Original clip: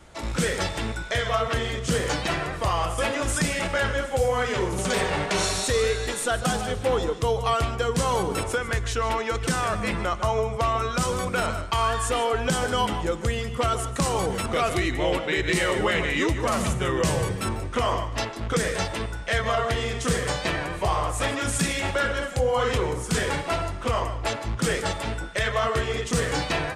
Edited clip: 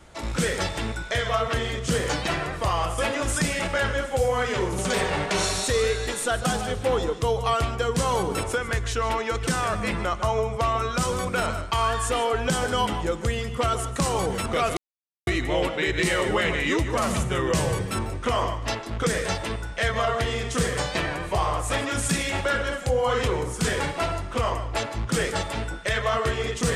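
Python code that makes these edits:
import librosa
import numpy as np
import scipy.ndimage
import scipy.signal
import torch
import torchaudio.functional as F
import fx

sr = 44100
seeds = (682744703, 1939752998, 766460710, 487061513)

y = fx.edit(x, sr, fx.insert_silence(at_s=14.77, length_s=0.5), tone=tone)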